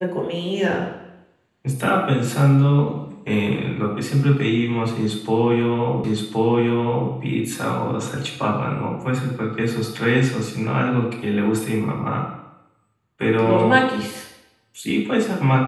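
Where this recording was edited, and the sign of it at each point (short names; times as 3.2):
6.04 repeat of the last 1.07 s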